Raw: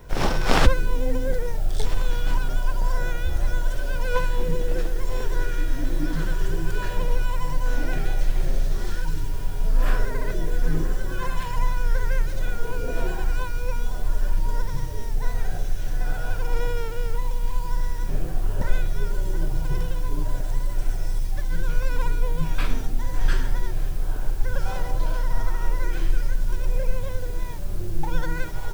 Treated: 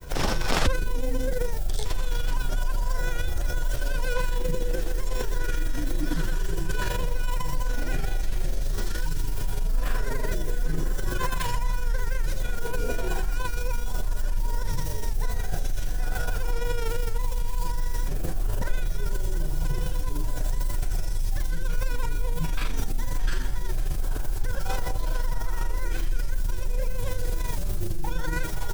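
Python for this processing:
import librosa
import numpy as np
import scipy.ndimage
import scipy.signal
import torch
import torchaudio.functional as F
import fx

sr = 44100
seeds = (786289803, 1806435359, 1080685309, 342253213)

p1 = fx.high_shelf(x, sr, hz=4400.0, db=9.0)
p2 = fx.over_compress(p1, sr, threshold_db=-25.0, ratio=-1.0)
p3 = p1 + (p2 * 10.0 ** (1.5 / 20.0))
p4 = fx.granulator(p3, sr, seeds[0], grain_ms=75.0, per_s=24.0, spray_ms=11.0, spread_st=0)
y = p4 * 10.0 ** (-6.0 / 20.0)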